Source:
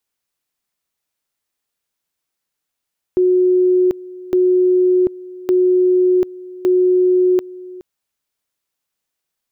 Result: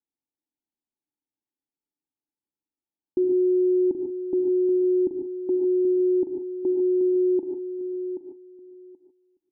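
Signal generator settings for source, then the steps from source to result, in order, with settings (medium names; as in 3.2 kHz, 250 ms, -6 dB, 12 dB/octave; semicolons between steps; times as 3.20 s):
two-level tone 365 Hz -10 dBFS, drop 20 dB, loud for 0.74 s, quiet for 0.42 s, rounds 4
cascade formant filter u; feedback delay 779 ms, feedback 16%, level -9.5 dB; gated-style reverb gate 170 ms rising, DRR 3.5 dB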